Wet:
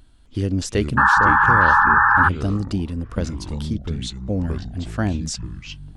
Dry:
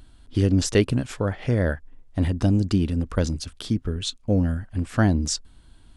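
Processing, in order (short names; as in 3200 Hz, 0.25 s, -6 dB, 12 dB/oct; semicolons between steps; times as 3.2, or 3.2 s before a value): echoes that change speed 0.257 s, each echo -5 st, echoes 3, each echo -6 dB; painted sound noise, 0.97–2.29, 800–1800 Hz -12 dBFS; gain -2.5 dB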